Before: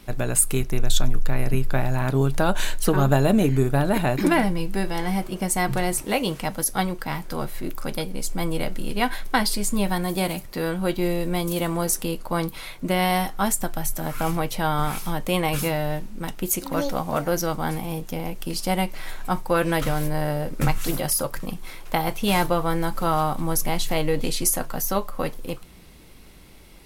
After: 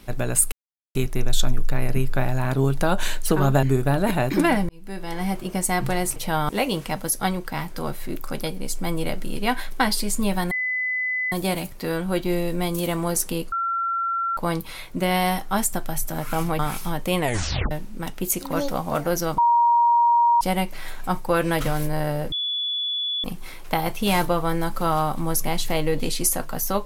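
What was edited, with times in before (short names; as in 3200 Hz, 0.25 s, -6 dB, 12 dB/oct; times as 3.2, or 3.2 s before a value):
0.52 insert silence 0.43 s
3.2–3.5 cut
4.56–5.21 fade in
10.05 add tone 2010 Hz -22 dBFS 0.81 s
12.25 add tone 1360 Hz -21.5 dBFS 0.85 s
14.47–14.8 move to 6.03
15.41 tape stop 0.51 s
17.59–18.62 bleep 945 Hz -14 dBFS
20.53–21.45 bleep 3430 Hz -23 dBFS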